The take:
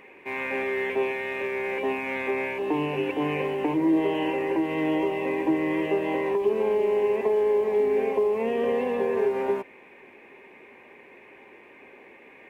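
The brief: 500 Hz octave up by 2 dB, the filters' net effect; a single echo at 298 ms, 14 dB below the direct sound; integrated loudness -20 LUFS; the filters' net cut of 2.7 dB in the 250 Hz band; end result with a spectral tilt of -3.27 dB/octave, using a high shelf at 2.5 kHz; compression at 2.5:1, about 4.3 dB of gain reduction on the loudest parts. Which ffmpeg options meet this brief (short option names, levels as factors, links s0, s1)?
-af "equalizer=f=250:t=o:g=-7,equalizer=f=500:t=o:g=5,highshelf=f=2500:g=4.5,acompressor=threshold=0.0631:ratio=2.5,aecho=1:1:298:0.2,volume=2.24"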